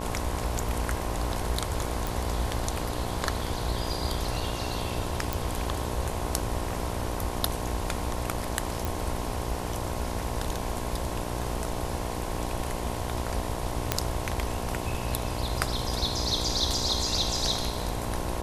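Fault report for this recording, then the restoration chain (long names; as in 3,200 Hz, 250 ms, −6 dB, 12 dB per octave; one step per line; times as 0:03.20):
mains buzz 60 Hz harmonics 18 −35 dBFS
0:02.07: click
0:05.33: click
0:08.85: click
0:13.92: click −6 dBFS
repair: click removal
hum removal 60 Hz, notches 18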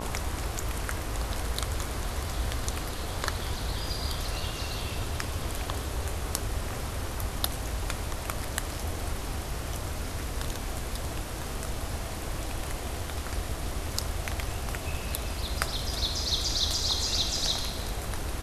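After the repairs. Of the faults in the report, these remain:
none of them is left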